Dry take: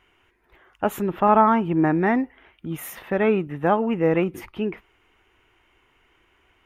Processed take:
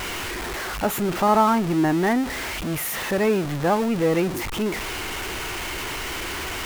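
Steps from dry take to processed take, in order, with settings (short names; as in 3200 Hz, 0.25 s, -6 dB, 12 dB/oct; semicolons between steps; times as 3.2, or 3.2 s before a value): zero-crossing step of -21 dBFS; gain -3 dB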